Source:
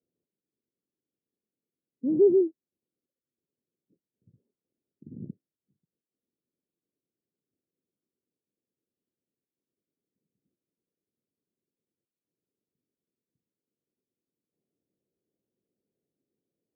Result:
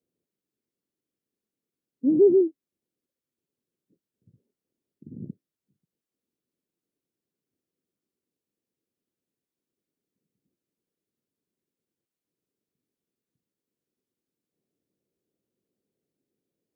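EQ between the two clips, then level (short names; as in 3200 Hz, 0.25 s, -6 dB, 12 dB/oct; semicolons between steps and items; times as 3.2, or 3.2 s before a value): dynamic EQ 280 Hz, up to +6 dB, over -43 dBFS, Q 6.1; +2.0 dB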